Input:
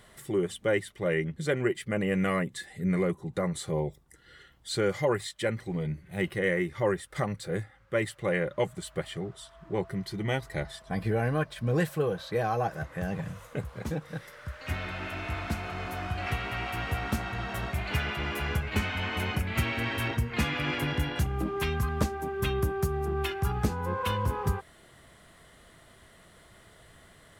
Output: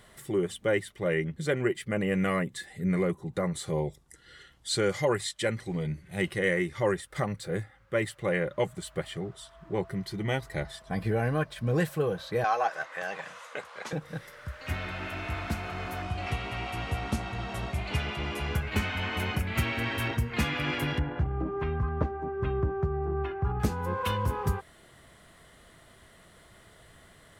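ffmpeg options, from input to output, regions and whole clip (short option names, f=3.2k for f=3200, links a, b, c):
-filter_complex "[0:a]asettb=1/sr,asplit=3[a][b][c];[a]atrim=end=3.664[d];[b]atrim=start=3.66:end=7.01,asetpts=PTS-STARTPTS,afade=t=in:d=0.004:c=qsin,afade=t=out:st=3.346:d=0.004:c=qsin,lowpass=10k,highshelf=f=4k:g=8[e];[c]atrim=start=7.006[f];[d][e]acrossfade=d=0.004:c1=hsin:c2=qsin[g];[g][f]acrossfade=d=0.004:c1=qsin:c2=hsin,asettb=1/sr,asplit=3[h][i][j];[h]atrim=end=12.444[k];[i]atrim=start=12.44:end=13.93,asetpts=PTS-STARTPTS,afade=t=in:d=0.004:c=qsin,afade=t=out:st=1.486:d=0.004:c=qsin,acontrast=65,highpass=780,lowpass=6.8k[l];[j]atrim=start=13.926[m];[k][l]acrossfade=d=0.004:c1=hsin:c2=qsin[n];[n][m]acrossfade=d=0.004:c1=qsin:c2=hsin,asettb=1/sr,asplit=3[o][p][q];[o]atrim=end=16.024[r];[p]atrim=start=16.02:end=18.55,asetpts=PTS-STARTPTS,afade=t=in:d=0.004:c=qsin,afade=t=out:st=2.526:d=0.004:c=qsin,lowpass=f=11k:w=0.5412,lowpass=f=11k:w=1.3066,equalizer=f=1.6k:w=2.2:g=-6.5[s];[q]atrim=start=18.546[t];[r][s]acrossfade=d=0.004:c1=hsin:c2=qsin[u];[u][t]acrossfade=d=0.004:c1=qsin:c2=hsin,asettb=1/sr,asplit=3[v][w][x];[v]atrim=end=20.994[y];[w]atrim=start=20.99:end=23.6,asetpts=PTS-STARTPTS,afade=t=in:d=0.004:c=qsin,afade=t=out:st=2.606:d=0.004:c=qsin,lowpass=1.3k,bandreject=f=210:w=6.3[z];[x]atrim=start=23.596[aa];[y][z]acrossfade=d=0.004:c1=hsin:c2=qsin[ab];[ab][aa]acrossfade=d=0.004:c1=qsin:c2=hsin"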